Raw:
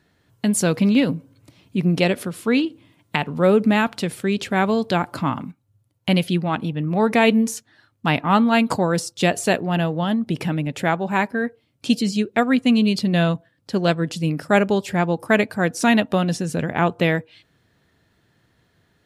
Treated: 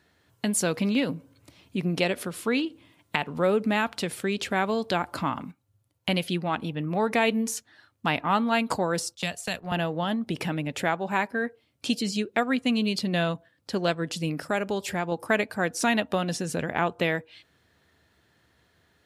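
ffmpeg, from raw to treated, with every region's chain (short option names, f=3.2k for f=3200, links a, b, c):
-filter_complex "[0:a]asettb=1/sr,asplit=3[a][b][c];[a]atrim=end=9.154[d];[b]atrim=start=9.15:end=9.72,asetpts=PTS-STARTPTS,afade=t=in:d=0.004:c=qsin,afade=t=out:st=0.566:d=0.004:c=qsin,agate=range=-11dB:threshold=-27dB:ratio=16:release=100:detection=peak,equalizer=f=340:t=o:w=1.2:g=-12,acrossover=split=250|3000[e][f][g];[f]acompressor=threshold=-30dB:ratio=3:attack=3.2:release=140:knee=2.83:detection=peak[h];[e][h][g]amix=inputs=3:normalize=0[i];[c]atrim=start=9.716[j];[d][i]acrossfade=d=0.004:c1=hsin:c2=qsin[k];[k][j]acrossfade=d=0.004:c1=qsin:c2=hsin,asettb=1/sr,asplit=3[l][m][n];[l]atrim=end=14.464[o];[m]atrim=start=14.46:end=15.12,asetpts=PTS-STARTPTS,afade=t=in:d=0.004:c=qsin,afade=t=out:st=0.656:d=0.004:c=qsin,highshelf=f=9.4k:g=5,acompressor=threshold=-25dB:ratio=1.5:attack=3.2:release=140:knee=1:detection=peak[p];[n]atrim=start=15.116[q];[o][p]acrossfade=d=0.004:c1=hsin:c2=qsin[r];[r][q]acrossfade=d=0.004:c1=qsin:c2=hsin,lowshelf=f=220:g=-10.5,acompressor=threshold=-28dB:ratio=1.5,equalizer=f=74:w=3.7:g=12.5"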